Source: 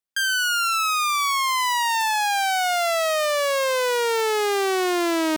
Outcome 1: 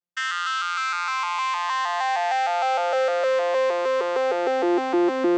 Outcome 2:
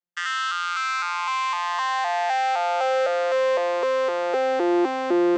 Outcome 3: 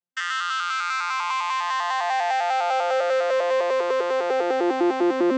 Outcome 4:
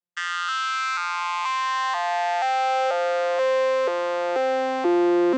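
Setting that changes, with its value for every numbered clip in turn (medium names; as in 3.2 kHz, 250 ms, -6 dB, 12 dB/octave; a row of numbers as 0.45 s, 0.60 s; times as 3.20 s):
vocoder on a broken chord, a note every: 154 ms, 255 ms, 100 ms, 484 ms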